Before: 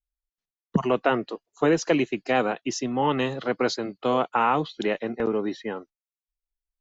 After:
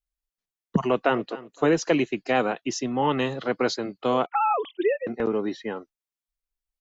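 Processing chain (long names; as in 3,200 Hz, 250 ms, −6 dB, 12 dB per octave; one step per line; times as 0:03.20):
0:00.80–0:01.31: delay throw 260 ms, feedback 20%, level −17.5 dB
0:04.26–0:05.07: three sine waves on the formant tracks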